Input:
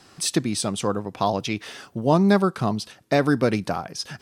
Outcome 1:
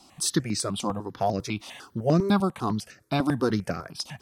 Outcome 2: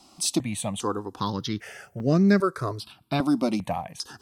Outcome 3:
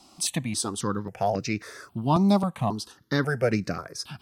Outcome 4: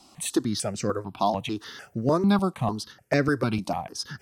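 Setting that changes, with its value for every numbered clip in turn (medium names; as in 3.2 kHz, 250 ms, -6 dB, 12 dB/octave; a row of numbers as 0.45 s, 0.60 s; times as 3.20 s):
stepped phaser, rate: 10 Hz, 2.5 Hz, 3.7 Hz, 6.7 Hz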